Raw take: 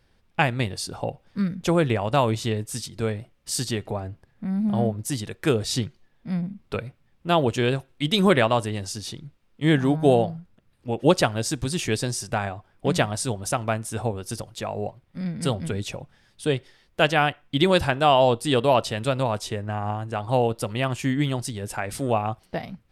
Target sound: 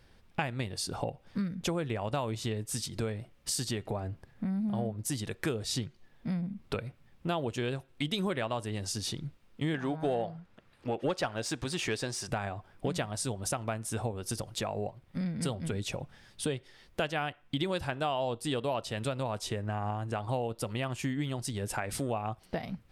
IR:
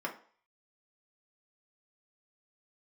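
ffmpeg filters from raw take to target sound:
-filter_complex "[0:a]acompressor=threshold=-35dB:ratio=4,asettb=1/sr,asplit=3[link_01][link_02][link_03];[link_01]atrim=end=9.744[link_04];[link_02]atrim=start=9.74:end=12.28,asetpts=PTS-STARTPTS,afade=type=in:duration=0.004:curve=qsin,afade=type=out:start_time=2.536:duration=0.004:curve=qsin,asplit=2[link_05][link_06];[link_06]highpass=frequency=720:poles=1,volume=12dB,asoftclip=type=tanh:threshold=-21.5dB[link_07];[link_05][link_07]amix=inputs=2:normalize=0,lowpass=frequency=2800:poles=1,volume=-6dB[link_08];[link_03]atrim=start=12.276[link_09];[link_04][link_08]acrossfade=duration=0.004:curve1=hsin:curve2=qsin[link_10];[link_10][link_09]acrossfade=duration=0.004:curve1=qsin:curve2=hsin,volume=3dB"

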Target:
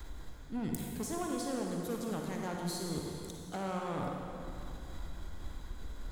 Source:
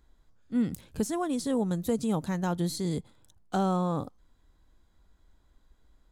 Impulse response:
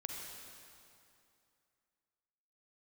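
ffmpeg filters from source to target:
-filter_complex "[0:a]asplit=2[link_01][link_02];[link_02]acompressor=mode=upward:threshold=-30dB:ratio=2.5,volume=2.5dB[link_03];[link_01][link_03]amix=inputs=2:normalize=0,volume=17dB,asoftclip=hard,volume=-17dB,areverse,acompressor=threshold=-33dB:ratio=6,areverse,aeval=exprs='0.119*(cos(1*acos(clip(val(0)/0.119,-1,1)))-cos(1*PI/2))+0.00841*(cos(6*acos(clip(val(0)/0.119,-1,1)))-cos(6*PI/2))':channel_layout=same[link_04];[1:a]atrim=start_sample=2205[link_05];[link_04][link_05]afir=irnorm=-1:irlink=0,adynamicequalizer=threshold=0.00398:dfrequency=180:dqfactor=1.1:tfrequency=180:tqfactor=1.1:attack=5:release=100:ratio=0.375:range=3:mode=cutabove:tftype=bell,volume=1dB"

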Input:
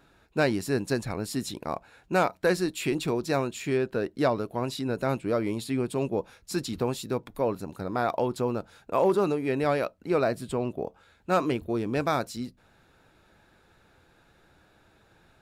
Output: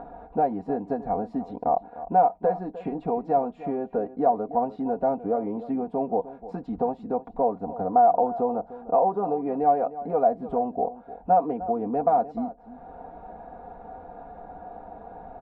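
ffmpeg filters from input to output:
ffmpeg -i in.wav -filter_complex "[0:a]acompressor=threshold=-30dB:ratio=3,aecho=1:1:4.2:0.83,acompressor=mode=upward:threshold=-35dB:ratio=2.5,lowpass=frequency=760:width_type=q:width=7.1,asplit=2[link_01][link_02];[link_02]adelay=303.2,volume=-15dB,highshelf=frequency=4000:gain=-6.82[link_03];[link_01][link_03]amix=inputs=2:normalize=0" out.wav

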